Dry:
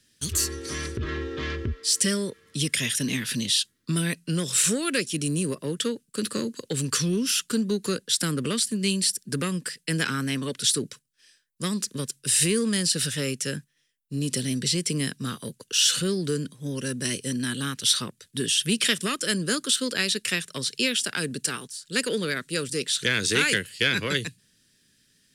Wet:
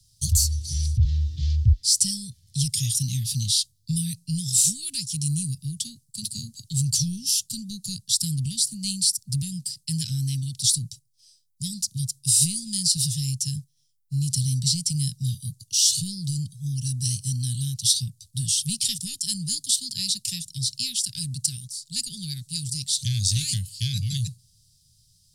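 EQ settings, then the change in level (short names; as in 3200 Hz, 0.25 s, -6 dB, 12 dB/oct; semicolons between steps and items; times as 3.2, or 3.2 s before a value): Chebyshev band-stop 120–4500 Hz, order 3; low shelf 250 Hz +10.5 dB; +4.0 dB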